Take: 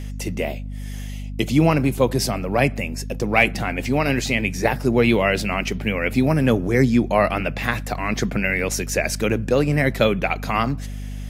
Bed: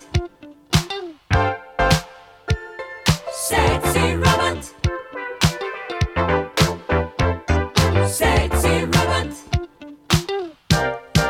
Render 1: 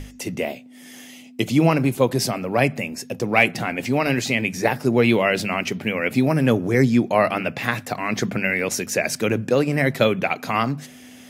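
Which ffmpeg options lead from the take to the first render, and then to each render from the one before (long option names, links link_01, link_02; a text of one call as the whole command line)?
ffmpeg -i in.wav -af "bandreject=frequency=50:width_type=h:width=6,bandreject=frequency=100:width_type=h:width=6,bandreject=frequency=150:width_type=h:width=6,bandreject=frequency=200:width_type=h:width=6" out.wav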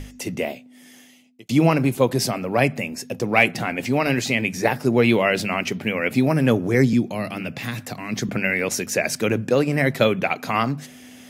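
ffmpeg -i in.wav -filter_complex "[0:a]asettb=1/sr,asplit=3[link_01][link_02][link_03];[link_01]atrim=end=6.934[link_04];[link_02]atrim=start=6.93:end=8.29,asetpts=PTS-STARTPTS,afade=type=in:duration=0.004:curve=qsin,afade=type=out:start_time=1.356:duration=0.004:curve=qsin,acrossover=split=320|3000[link_05][link_06][link_07];[link_06]acompressor=threshold=-36dB:ratio=2.5:attack=3.2:release=140:knee=2.83:detection=peak[link_08];[link_05][link_08][link_07]amix=inputs=3:normalize=0[link_09];[link_03]atrim=start=8.286[link_10];[link_04][link_09]acrossfade=duration=0.004:curve1=hsin:curve2=qsin[link_11];[link_11][link_10]acrossfade=duration=0.004:curve1=qsin:curve2=hsin,asplit=2[link_12][link_13];[link_12]atrim=end=1.49,asetpts=PTS-STARTPTS,afade=type=out:start_time=0.42:duration=1.07[link_14];[link_13]atrim=start=1.49,asetpts=PTS-STARTPTS,afade=type=in:duration=0.004:curve=hsin[link_15];[link_14][link_15]concat=n=2:v=0:a=1" out.wav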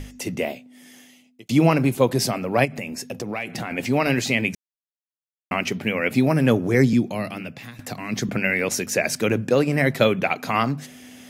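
ffmpeg -i in.wav -filter_complex "[0:a]asplit=3[link_01][link_02][link_03];[link_01]afade=type=out:start_time=2.64:duration=0.02[link_04];[link_02]acompressor=threshold=-25dB:ratio=6:attack=3.2:release=140:knee=1:detection=peak,afade=type=in:start_time=2.64:duration=0.02,afade=type=out:start_time=3.7:duration=0.02[link_05];[link_03]afade=type=in:start_time=3.7:duration=0.02[link_06];[link_04][link_05][link_06]amix=inputs=3:normalize=0,asplit=4[link_07][link_08][link_09][link_10];[link_07]atrim=end=4.55,asetpts=PTS-STARTPTS,afade=type=out:start_time=4.546:duration=0.004:curve=hsin[link_11];[link_08]atrim=start=4.55:end=5.51,asetpts=PTS-STARTPTS,volume=0[link_12];[link_09]atrim=start=5.51:end=7.79,asetpts=PTS-STARTPTS,afade=type=in:duration=0.004:curve=hsin,afade=type=out:start_time=1.66:duration=0.62:silence=0.149624[link_13];[link_10]atrim=start=7.79,asetpts=PTS-STARTPTS,afade=type=in:duration=0.004:curve=hsin:silence=0.149624[link_14];[link_11][link_12][link_13][link_14]concat=n=4:v=0:a=1" out.wav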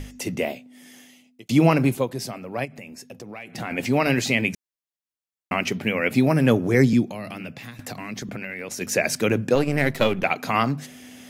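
ffmpeg -i in.wav -filter_complex "[0:a]asplit=3[link_01][link_02][link_03];[link_01]afade=type=out:start_time=7.04:duration=0.02[link_04];[link_02]acompressor=threshold=-29dB:ratio=6:attack=3.2:release=140:knee=1:detection=peak,afade=type=in:start_time=7.04:duration=0.02,afade=type=out:start_time=8.8:duration=0.02[link_05];[link_03]afade=type=in:start_time=8.8:duration=0.02[link_06];[link_04][link_05][link_06]amix=inputs=3:normalize=0,asettb=1/sr,asplit=3[link_07][link_08][link_09];[link_07]atrim=end=9.554[link_10];[link_08]atrim=start=9.55:end=10.24,asetpts=PTS-STARTPTS,afade=type=in:duration=0.004:curve=qsin,afade=type=out:start_time=0.686:duration=0.004:curve=qsin,aeval=exprs='if(lt(val(0),0),0.447*val(0),val(0))':channel_layout=same[link_11];[link_09]atrim=start=10.236[link_12];[link_10][link_11]acrossfade=duration=0.004:curve1=hsin:curve2=qsin[link_13];[link_13][link_12]acrossfade=duration=0.004:curve1=qsin:curve2=hsin,asplit=3[link_14][link_15][link_16];[link_14]atrim=end=2.06,asetpts=PTS-STARTPTS,afade=type=out:start_time=1.92:duration=0.14:silence=0.354813[link_17];[link_15]atrim=start=2.06:end=3.51,asetpts=PTS-STARTPTS,volume=-9dB[link_18];[link_16]atrim=start=3.51,asetpts=PTS-STARTPTS,afade=type=in:duration=0.14:silence=0.354813[link_19];[link_17][link_18][link_19]concat=n=3:v=0:a=1" out.wav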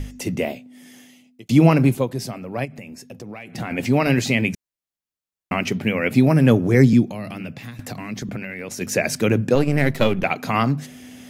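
ffmpeg -i in.wav -af "lowshelf=frequency=260:gain=7" out.wav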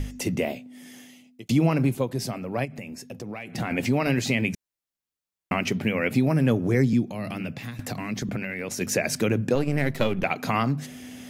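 ffmpeg -i in.wav -af "acompressor=threshold=-23dB:ratio=2" out.wav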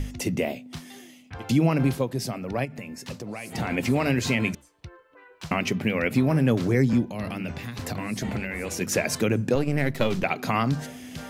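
ffmpeg -i in.wav -i bed.wav -filter_complex "[1:a]volume=-22.5dB[link_01];[0:a][link_01]amix=inputs=2:normalize=0" out.wav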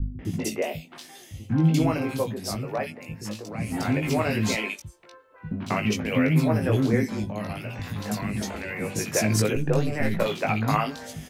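ffmpeg -i in.wav -filter_complex "[0:a]asplit=2[link_01][link_02];[link_02]adelay=19,volume=-4dB[link_03];[link_01][link_03]amix=inputs=2:normalize=0,acrossover=split=310|2400[link_04][link_05][link_06];[link_05]adelay=190[link_07];[link_06]adelay=250[link_08];[link_04][link_07][link_08]amix=inputs=3:normalize=0" out.wav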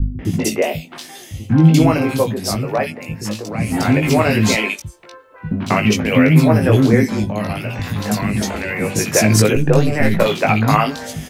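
ffmpeg -i in.wav -af "volume=10dB,alimiter=limit=-1dB:level=0:latency=1" out.wav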